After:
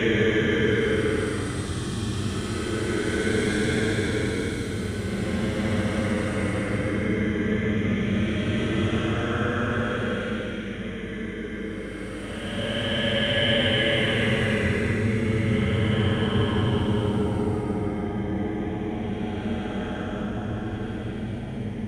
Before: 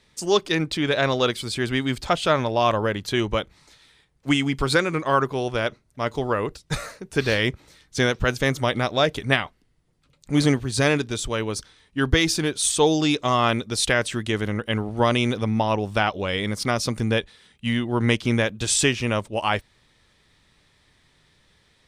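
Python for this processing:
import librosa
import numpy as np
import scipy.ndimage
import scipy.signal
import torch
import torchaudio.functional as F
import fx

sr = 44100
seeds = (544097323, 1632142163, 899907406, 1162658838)

y = fx.reverse_delay_fb(x, sr, ms=152, feedback_pct=60, wet_db=-10)
y = fx.paulstretch(y, sr, seeds[0], factor=36.0, window_s=0.05, from_s=14.33)
y = fx.add_hum(y, sr, base_hz=50, snr_db=18)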